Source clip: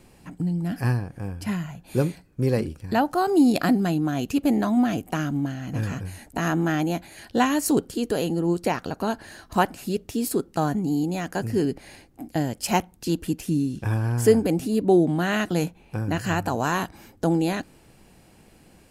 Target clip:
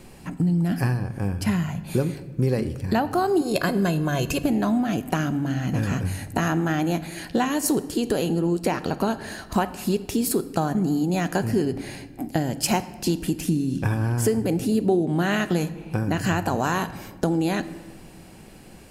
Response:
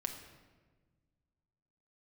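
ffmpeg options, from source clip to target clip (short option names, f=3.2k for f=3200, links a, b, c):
-filter_complex "[0:a]asettb=1/sr,asplit=3[a][b][c];[a]atrim=end=3.414[d];[b]atrim=start=3.41:end=4.44,asetpts=PTS-STARTPTS,afade=t=in:d=0.004:c=qsin,afade=t=out:st=1.026:d=0.004:c=qsin,aecho=1:1:1.9:0.77,atrim=end_sample=45423[e];[c]atrim=start=4.436[f];[d][e]acrossfade=d=0.004:c1=hsin:c2=qsin[g];[g][f]acrossfade=d=0.004:c1=qsin:c2=hsin,acompressor=threshold=-26dB:ratio=6,asplit=2[h][i];[1:a]atrim=start_sample=2205[j];[i][j]afir=irnorm=-1:irlink=0,volume=-3dB[k];[h][k]amix=inputs=2:normalize=0,volume=2.5dB"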